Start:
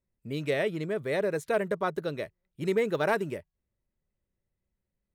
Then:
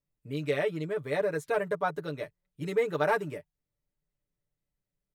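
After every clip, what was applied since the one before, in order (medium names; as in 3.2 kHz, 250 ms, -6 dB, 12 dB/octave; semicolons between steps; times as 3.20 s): comb 6.8 ms, depth 89%; dynamic bell 990 Hz, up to +5 dB, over -36 dBFS, Q 1.1; trim -5.5 dB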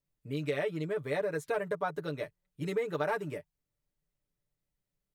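compression 3:1, threshold -29 dBFS, peak gain reduction 6.5 dB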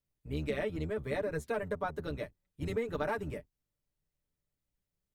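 octave divider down 1 oct, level -1 dB; trim -2.5 dB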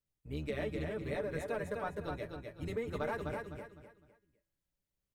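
feedback comb 110 Hz, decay 1 s, harmonics odd, mix 50%; on a send: feedback delay 254 ms, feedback 32%, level -4.5 dB; on the sum: trim +2 dB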